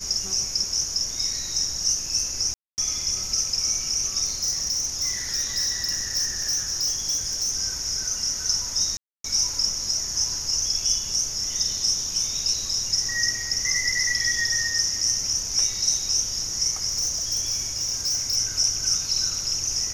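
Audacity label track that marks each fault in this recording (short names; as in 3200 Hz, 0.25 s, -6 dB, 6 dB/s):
2.540000	2.780000	gap 0.239 s
4.250000	7.540000	clipped -20.5 dBFS
8.970000	9.240000	gap 0.273 s
16.880000	18.370000	clipped -20.5 dBFS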